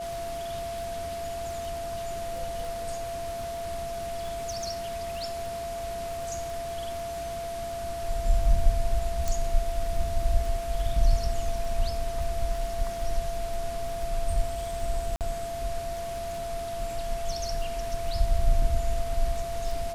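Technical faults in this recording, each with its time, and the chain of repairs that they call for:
crackle 38 per s -35 dBFS
whine 680 Hz -32 dBFS
9.28 s: pop
15.16–15.21 s: dropout 48 ms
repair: de-click; band-stop 680 Hz, Q 30; interpolate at 15.16 s, 48 ms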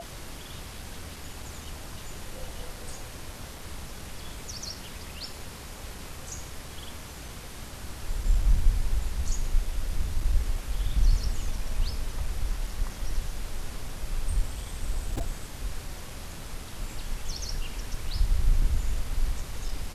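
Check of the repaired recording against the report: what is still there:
nothing left

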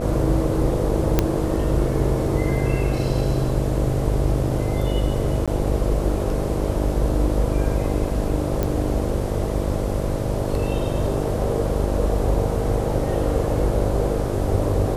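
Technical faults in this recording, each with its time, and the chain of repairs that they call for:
buzz 50 Hz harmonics 13 -26 dBFS
1.19 s: pop -3 dBFS
5.46–5.48 s: dropout 16 ms
8.63 s: pop -10 dBFS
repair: de-click; de-hum 50 Hz, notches 13; interpolate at 5.46 s, 16 ms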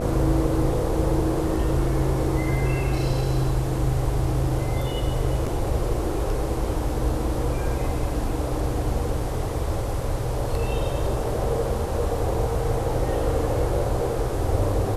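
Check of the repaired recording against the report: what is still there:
nothing left

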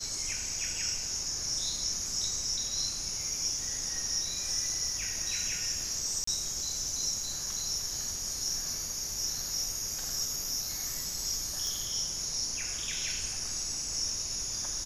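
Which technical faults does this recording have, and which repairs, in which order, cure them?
6.24–6.27 s: dropout 34 ms
11.67 s: pop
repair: de-click; interpolate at 6.24 s, 34 ms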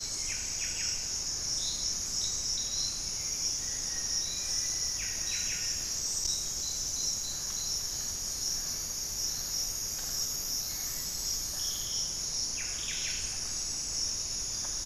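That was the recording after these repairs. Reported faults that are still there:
nothing left

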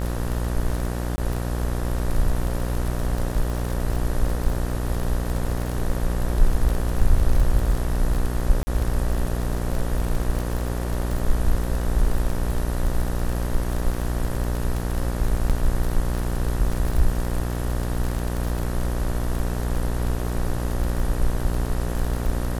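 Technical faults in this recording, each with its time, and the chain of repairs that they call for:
buzz 60 Hz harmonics 32 -26 dBFS
crackle 28 per s -24 dBFS
1.16–1.18 s: dropout 20 ms
8.63–8.67 s: dropout 40 ms
15.49–15.50 s: dropout 7.2 ms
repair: de-click; de-hum 60 Hz, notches 32; interpolate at 1.16 s, 20 ms; interpolate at 8.63 s, 40 ms; interpolate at 15.49 s, 7.2 ms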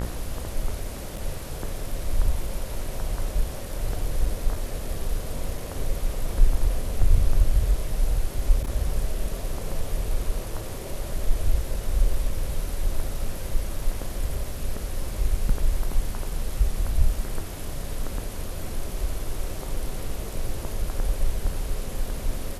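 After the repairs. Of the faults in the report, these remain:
nothing left

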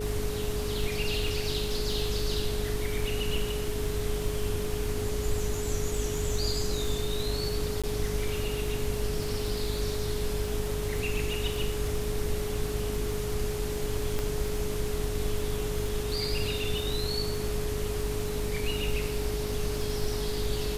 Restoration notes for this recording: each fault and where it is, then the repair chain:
buzz 50 Hz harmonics 9 -35 dBFS
crackle 44 per s -35 dBFS
whine 420 Hz -33 dBFS
7.82–7.84 s: dropout 16 ms
14.19 s: pop -16 dBFS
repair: de-click; de-hum 50 Hz, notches 9; band-stop 420 Hz, Q 30; interpolate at 7.82 s, 16 ms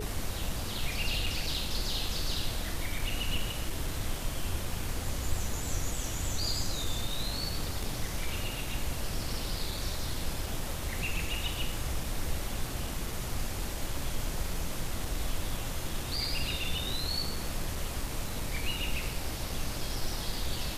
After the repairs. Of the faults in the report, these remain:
14.19 s: pop

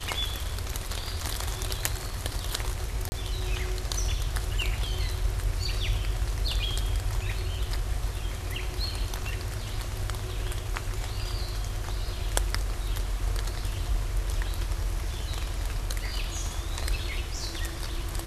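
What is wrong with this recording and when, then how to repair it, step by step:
3.09–3.12 s: dropout 30 ms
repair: interpolate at 3.09 s, 30 ms

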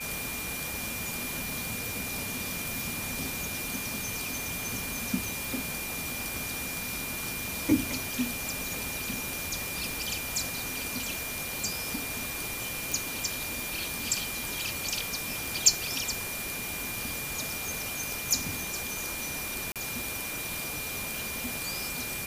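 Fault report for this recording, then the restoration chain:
whine 2.4 kHz -38 dBFS
12.92 s: pop
19.72–19.76 s: dropout 37 ms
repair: de-click; band-stop 2.4 kHz, Q 30; interpolate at 19.72 s, 37 ms

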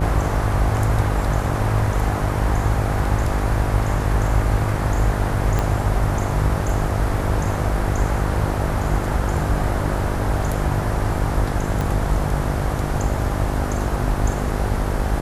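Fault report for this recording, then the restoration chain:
buzz 50 Hz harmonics 16 -25 dBFS
5.59 s: pop -8 dBFS
11.81 s: pop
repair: de-click; de-hum 50 Hz, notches 16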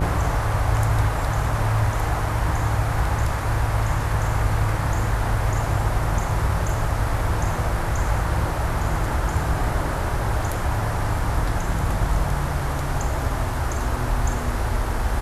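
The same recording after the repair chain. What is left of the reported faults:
5.59 s: pop
11.81 s: pop

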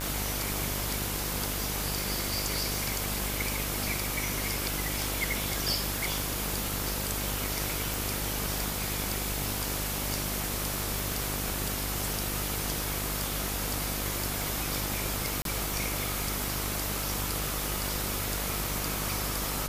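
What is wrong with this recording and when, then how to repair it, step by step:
buzz 50 Hz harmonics 32 -36 dBFS
tick 33 1/3 rpm
7.94 s: pop
10.99 s: pop
15.42–15.45 s: dropout 32 ms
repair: de-click; de-hum 50 Hz, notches 32; interpolate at 15.42 s, 32 ms

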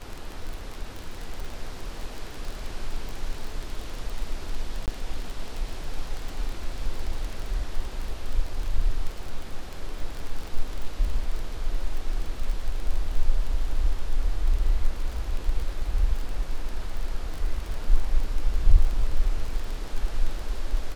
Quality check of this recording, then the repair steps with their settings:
crackle 28 per s -29 dBFS
4.86–4.88 s: dropout 18 ms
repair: de-click; interpolate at 4.86 s, 18 ms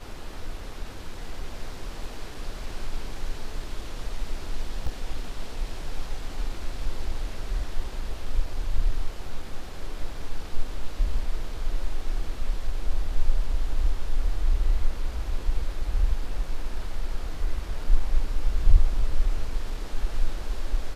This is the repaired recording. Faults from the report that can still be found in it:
nothing left

